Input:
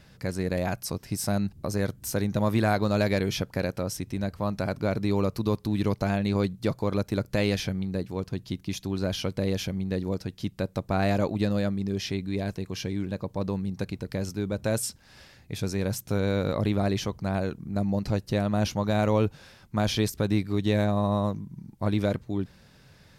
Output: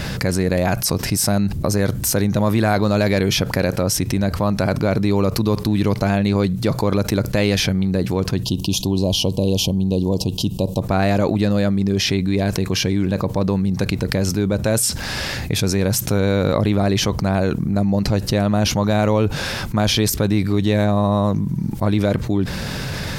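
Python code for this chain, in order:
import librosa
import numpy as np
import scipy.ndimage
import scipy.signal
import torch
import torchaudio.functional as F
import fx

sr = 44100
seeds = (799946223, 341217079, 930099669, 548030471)

y = fx.ellip_bandstop(x, sr, low_hz=1000.0, high_hz=2800.0, order=3, stop_db=40, at=(8.43, 10.82))
y = fx.env_flatten(y, sr, amount_pct=70)
y = F.gain(torch.from_numpy(y), 5.0).numpy()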